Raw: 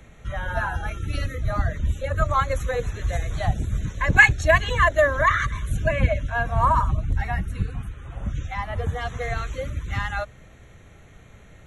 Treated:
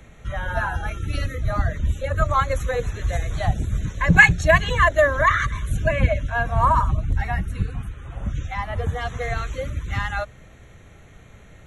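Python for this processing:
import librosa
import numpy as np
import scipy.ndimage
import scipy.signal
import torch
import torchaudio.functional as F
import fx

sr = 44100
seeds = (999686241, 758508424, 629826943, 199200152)

y = fx.peak_eq(x, sr, hz=170.0, db=15.0, octaves=0.23, at=(4.06, 4.74))
y = y * 10.0 ** (1.5 / 20.0)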